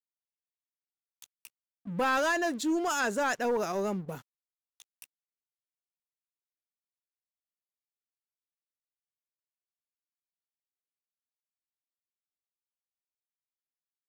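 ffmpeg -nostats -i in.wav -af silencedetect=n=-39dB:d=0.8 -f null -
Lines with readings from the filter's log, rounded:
silence_start: 0.00
silence_end: 1.22 | silence_duration: 1.22
silence_start: 5.04
silence_end: 14.09 | silence_duration: 9.05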